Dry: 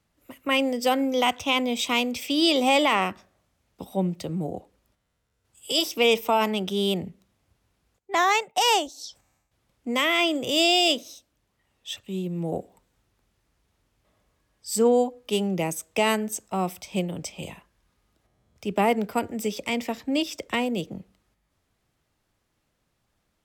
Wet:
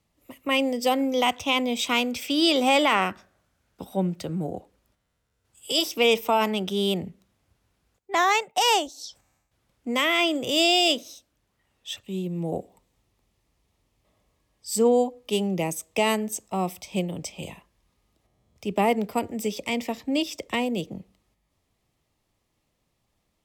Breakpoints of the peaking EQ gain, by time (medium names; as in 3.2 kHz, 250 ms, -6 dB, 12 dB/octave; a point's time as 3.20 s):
peaking EQ 1.5 kHz 0.27 oct
-10 dB
from 1.00 s -4 dB
from 1.82 s +7.5 dB
from 4.57 s +0.5 dB
from 12.02 s -10.5 dB